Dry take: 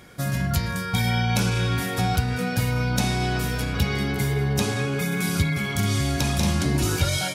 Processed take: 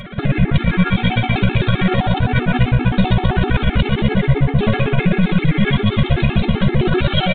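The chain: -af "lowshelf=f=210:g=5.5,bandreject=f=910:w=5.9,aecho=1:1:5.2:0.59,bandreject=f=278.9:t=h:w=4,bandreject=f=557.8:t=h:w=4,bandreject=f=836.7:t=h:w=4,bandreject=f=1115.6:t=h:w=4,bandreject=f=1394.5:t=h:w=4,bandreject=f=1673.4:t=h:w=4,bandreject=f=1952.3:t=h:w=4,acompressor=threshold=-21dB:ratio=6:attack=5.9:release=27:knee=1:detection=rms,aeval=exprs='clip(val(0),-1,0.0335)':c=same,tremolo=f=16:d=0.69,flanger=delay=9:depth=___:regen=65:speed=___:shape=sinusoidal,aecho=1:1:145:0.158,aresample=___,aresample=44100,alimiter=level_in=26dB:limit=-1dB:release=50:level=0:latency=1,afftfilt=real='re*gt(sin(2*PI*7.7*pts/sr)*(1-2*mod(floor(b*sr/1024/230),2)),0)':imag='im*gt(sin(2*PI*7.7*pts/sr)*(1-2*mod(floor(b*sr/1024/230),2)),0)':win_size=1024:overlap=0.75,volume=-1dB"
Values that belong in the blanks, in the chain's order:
8.9, 1.7, 8000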